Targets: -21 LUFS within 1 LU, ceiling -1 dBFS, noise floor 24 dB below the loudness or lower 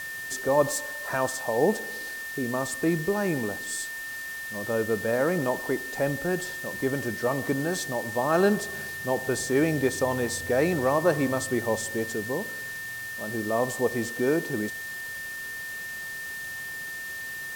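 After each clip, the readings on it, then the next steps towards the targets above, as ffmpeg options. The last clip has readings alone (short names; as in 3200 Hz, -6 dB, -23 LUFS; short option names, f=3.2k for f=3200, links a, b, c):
steady tone 1800 Hz; tone level -34 dBFS; noise floor -36 dBFS; noise floor target -52 dBFS; loudness -28.0 LUFS; peak -9.0 dBFS; loudness target -21.0 LUFS
-> -af "bandreject=f=1.8k:w=30"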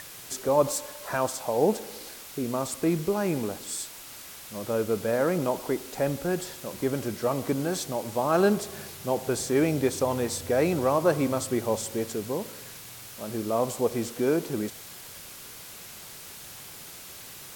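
steady tone none; noise floor -44 dBFS; noise floor target -52 dBFS
-> -af "afftdn=nr=8:nf=-44"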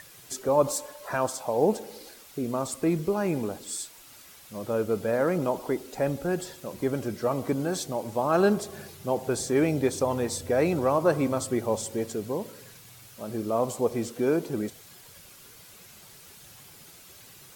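noise floor -51 dBFS; noise floor target -52 dBFS
-> -af "afftdn=nr=6:nf=-51"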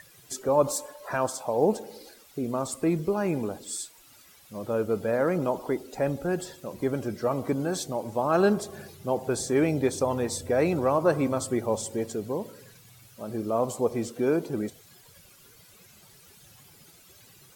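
noise floor -55 dBFS; loudness -28.0 LUFS; peak -9.5 dBFS; loudness target -21.0 LUFS
-> -af "volume=7dB"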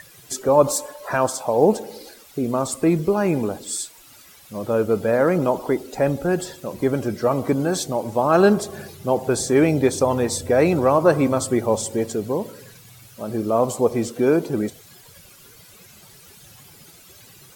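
loudness -21.0 LUFS; peak -2.5 dBFS; noise floor -48 dBFS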